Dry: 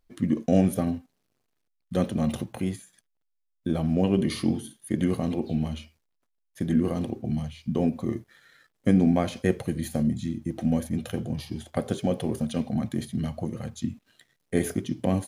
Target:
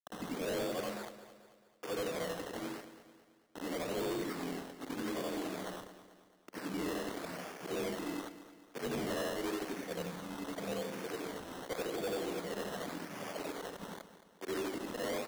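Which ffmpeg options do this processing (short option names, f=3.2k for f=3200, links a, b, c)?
-filter_complex "[0:a]afftfilt=real='re':imag='-im':win_size=8192:overlap=0.75,asplit=2[a][b];[b]adelay=177,lowpass=f=910:p=1,volume=-24dB,asplit=2[c][d];[d]adelay=177,lowpass=f=910:p=1,volume=0.16[e];[c][e]amix=inputs=2:normalize=0[f];[a][f]amix=inputs=2:normalize=0,acrusher=bits=6:mix=0:aa=0.000001,highpass=f=390:t=q:w=0.5412,highpass=f=390:t=q:w=1.307,lowpass=f=2.2k:t=q:w=0.5176,lowpass=f=2.2k:t=q:w=0.7071,lowpass=f=2.2k:t=q:w=1.932,afreqshift=-51,acrusher=samples=15:mix=1:aa=0.000001:lfo=1:lforange=9:lforate=0.88,asoftclip=type=hard:threshold=-36.5dB,asplit=2[g][h];[h]aecho=0:1:219|438|657|876|1095:0.211|0.0993|0.0467|0.0219|0.0103[i];[g][i]amix=inputs=2:normalize=0,volume=3dB"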